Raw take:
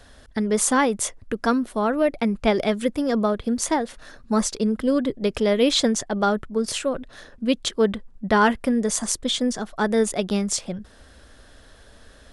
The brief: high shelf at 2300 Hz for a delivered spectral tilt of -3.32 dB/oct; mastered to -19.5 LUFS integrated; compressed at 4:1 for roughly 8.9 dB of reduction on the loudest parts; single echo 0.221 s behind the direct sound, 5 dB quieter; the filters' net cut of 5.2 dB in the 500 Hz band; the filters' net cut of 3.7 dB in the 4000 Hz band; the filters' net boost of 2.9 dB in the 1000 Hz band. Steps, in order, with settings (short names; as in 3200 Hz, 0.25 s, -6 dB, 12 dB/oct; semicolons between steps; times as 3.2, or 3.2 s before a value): bell 500 Hz -8 dB; bell 1000 Hz +5.5 dB; high shelf 2300 Hz +4.5 dB; bell 4000 Hz -9 dB; compressor 4:1, threshold -22 dBFS; echo 0.221 s -5 dB; gain +6.5 dB